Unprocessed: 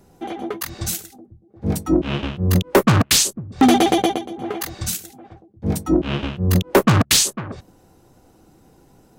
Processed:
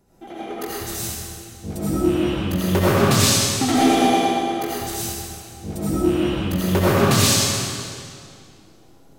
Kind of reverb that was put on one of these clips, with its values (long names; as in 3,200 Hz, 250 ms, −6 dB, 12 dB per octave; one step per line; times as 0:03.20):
comb and all-pass reverb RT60 2.2 s, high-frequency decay 0.95×, pre-delay 45 ms, DRR −9.5 dB
level −10 dB